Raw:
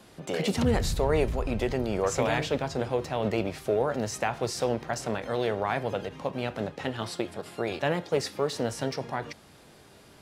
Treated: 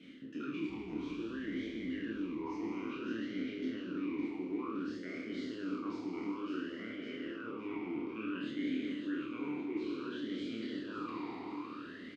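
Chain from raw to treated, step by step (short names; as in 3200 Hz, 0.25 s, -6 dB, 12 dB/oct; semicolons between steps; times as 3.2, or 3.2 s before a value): spectral trails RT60 1.82 s; notch 1000 Hz, Q 5.8; harmonic-percussive split harmonic -8 dB; reverse; compressor 6:1, threshold -41 dBFS, peak gain reduction 18.5 dB; reverse; varispeed -16%; air absorption 57 m; doubler 27 ms -3 dB; feedback echo 0.558 s, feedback 47%, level -6 dB; vowel sweep i-u 0.57 Hz; gain +13 dB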